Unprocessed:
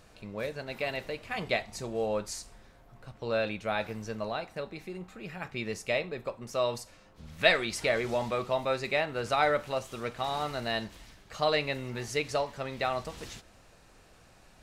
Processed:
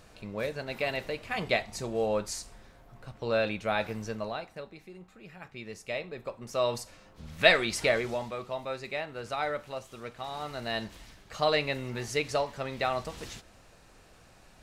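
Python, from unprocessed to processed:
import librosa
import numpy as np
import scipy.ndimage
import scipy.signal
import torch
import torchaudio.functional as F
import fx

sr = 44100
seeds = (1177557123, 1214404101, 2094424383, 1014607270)

y = fx.gain(x, sr, db=fx.line((4.04, 2.0), (4.82, -7.5), (5.66, -7.5), (6.8, 2.5), (7.88, 2.5), (8.32, -6.0), (10.31, -6.0), (10.92, 1.0)))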